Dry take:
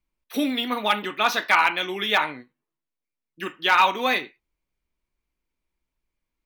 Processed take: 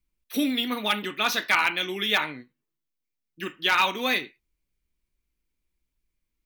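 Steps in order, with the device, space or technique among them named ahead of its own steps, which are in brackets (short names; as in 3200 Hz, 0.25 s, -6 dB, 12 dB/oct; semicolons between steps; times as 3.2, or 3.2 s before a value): smiley-face EQ (low shelf 140 Hz +3.5 dB; bell 850 Hz -7.5 dB 1.6 oct; high shelf 6600 Hz +4 dB); 2.2–3.58 bell 9900 Hz -5 dB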